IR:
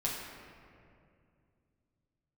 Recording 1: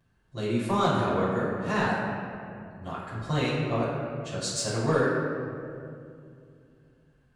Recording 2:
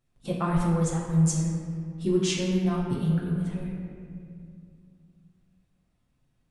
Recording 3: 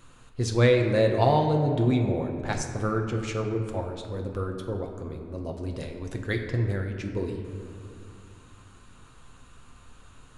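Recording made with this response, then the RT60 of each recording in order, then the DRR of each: 2; 2.4 s, 2.4 s, 2.5 s; -13.5 dB, -5.5 dB, 2.5 dB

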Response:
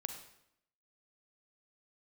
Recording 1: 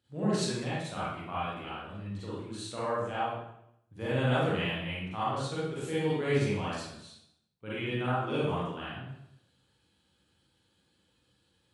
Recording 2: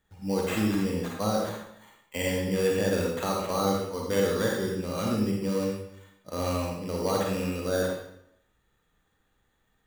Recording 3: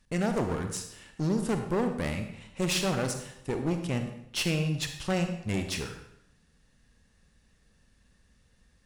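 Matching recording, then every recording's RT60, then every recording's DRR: 3; 0.75 s, 0.75 s, 0.75 s; -10.5 dB, -2.0 dB, 6.0 dB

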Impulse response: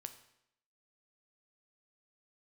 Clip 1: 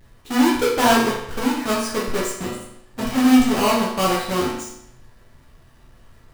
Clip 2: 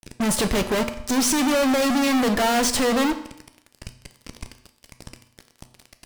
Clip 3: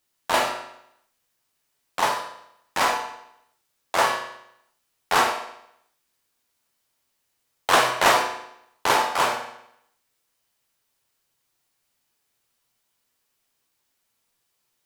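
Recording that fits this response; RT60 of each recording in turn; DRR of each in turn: 2; 0.75 s, 0.75 s, 0.75 s; -5.5 dB, 8.0 dB, 0.0 dB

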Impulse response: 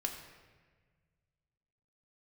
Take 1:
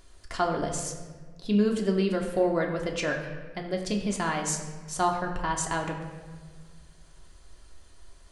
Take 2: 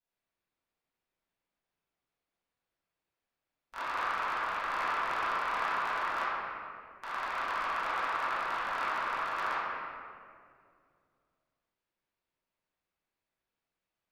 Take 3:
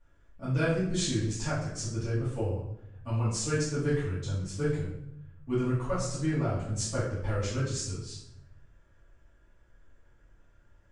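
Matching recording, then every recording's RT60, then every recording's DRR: 1; 1.5 s, 2.3 s, 0.80 s; 1.0 dB, -14.0 dB, -12.0 dB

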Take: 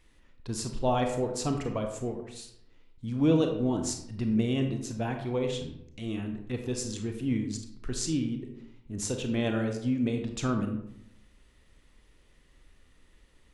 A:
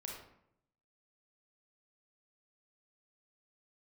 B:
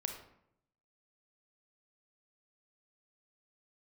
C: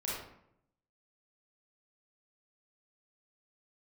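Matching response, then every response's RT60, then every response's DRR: B; 0.75 s, 0.75 s, 0.75 s; -2.0 dB, 4.0 dB, -7.0 dB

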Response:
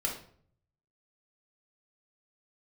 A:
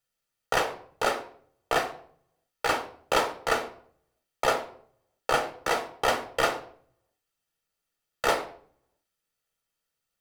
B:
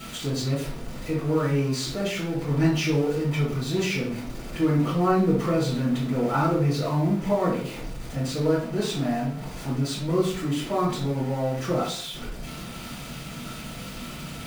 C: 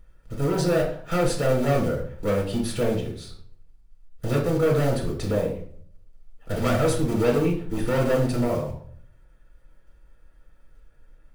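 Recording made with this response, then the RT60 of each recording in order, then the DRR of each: C; 0.55 s, 0.55 s, 0.55 s; 6.0 dB, -8.0 dB, -1.5 dB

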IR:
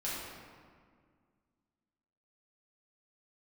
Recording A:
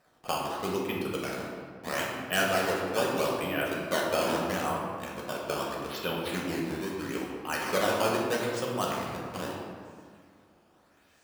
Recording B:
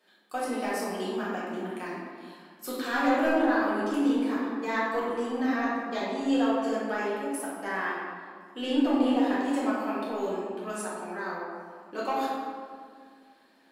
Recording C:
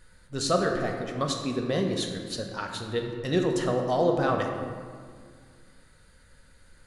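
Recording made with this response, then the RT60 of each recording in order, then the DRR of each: B; 1.9 s, 1.9 s, 1.9 s; -3.5 dB, -8.5 dB, 2.0 dB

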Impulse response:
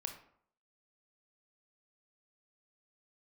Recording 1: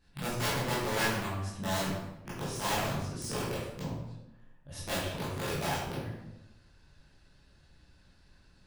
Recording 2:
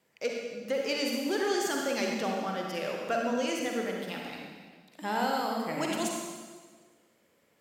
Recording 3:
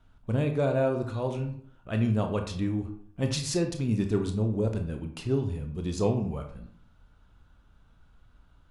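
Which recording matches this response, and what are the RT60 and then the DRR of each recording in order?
3; 0.95 s, 1.5 s, 0.60 s; -10.0 dB, -0.5 dB, 4.5 dB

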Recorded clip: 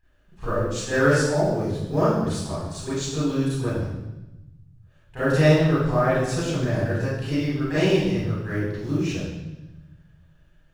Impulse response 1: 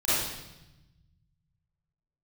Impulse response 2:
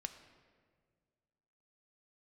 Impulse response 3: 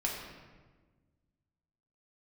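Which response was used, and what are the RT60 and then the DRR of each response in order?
1; 0.95 s, 1.8 s, 1.4 s; -13.0 dB, 7.0 dB, -2.5 dB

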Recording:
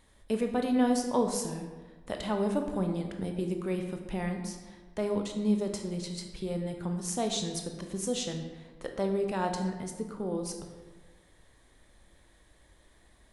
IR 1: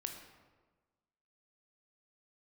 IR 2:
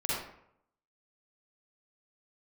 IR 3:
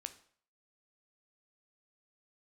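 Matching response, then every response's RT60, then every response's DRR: 1; 1.3 s, 0.70 s, 0.55 s; 4.0 dB, -8.0 dB, 9.0 dB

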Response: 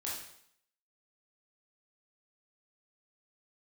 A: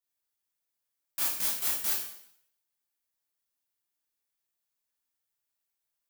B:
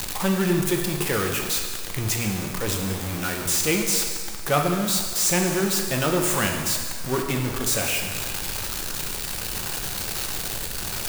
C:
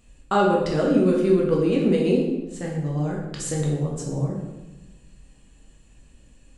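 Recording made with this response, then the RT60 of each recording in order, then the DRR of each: A; 0.65 s, 1.7 s, 1.1 s; -6.0 dB, 1.5 dB, -3.0 dB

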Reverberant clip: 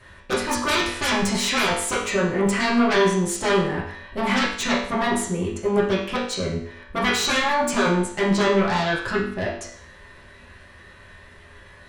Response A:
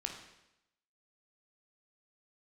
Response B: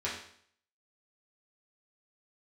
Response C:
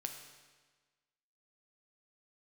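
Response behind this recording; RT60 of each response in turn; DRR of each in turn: B; 0.85 s, 0.60 s, 1.4 s; 2.0 dB, -7.5 dB, 4.0 dB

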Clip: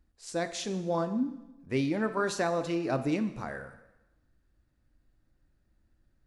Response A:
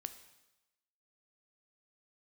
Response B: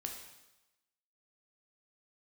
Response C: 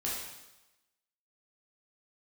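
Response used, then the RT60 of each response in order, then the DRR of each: A; 1.0 s, 1.0 s, 1.0 s; 9.5 dB, 1.5 dB, -6.0 dB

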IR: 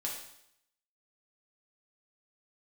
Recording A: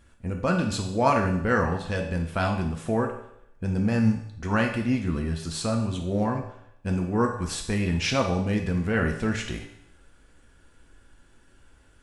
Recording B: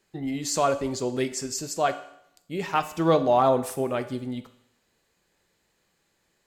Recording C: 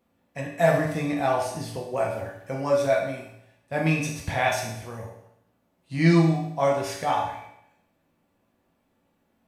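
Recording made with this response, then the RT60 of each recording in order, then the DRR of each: C; 0.75 s, 0.75 s, 0.75 s; 2.0 dB, 9.0 dB, -2.5 dB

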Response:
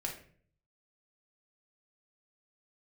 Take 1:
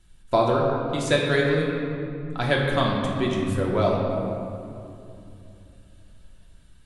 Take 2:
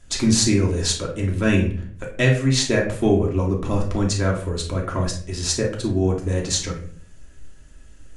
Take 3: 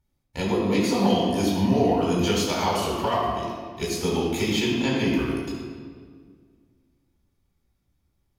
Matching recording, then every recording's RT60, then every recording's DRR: 2; 2.8 s, 0.50 s, 1.8 s; -2.5 dB, -2.0 dB, -6.0 dB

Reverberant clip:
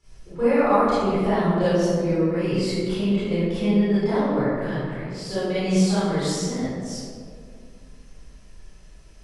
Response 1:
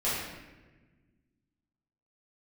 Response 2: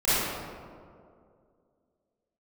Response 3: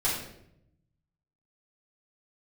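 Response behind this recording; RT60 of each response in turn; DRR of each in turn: 2; 1.2 s, 2.3 s, 0.75 s; -11.0 dB, -14.5 dB, -9.5 dB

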